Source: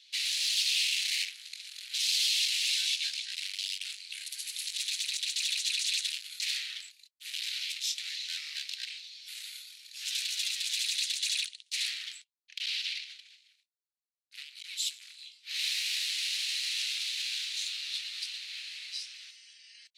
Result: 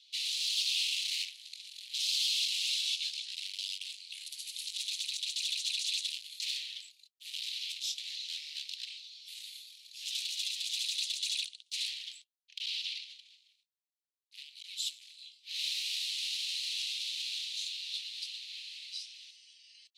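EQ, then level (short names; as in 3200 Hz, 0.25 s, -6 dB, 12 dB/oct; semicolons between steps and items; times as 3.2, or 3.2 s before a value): ladder high-pass 2500 Hz, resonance 35%; +1.5 dB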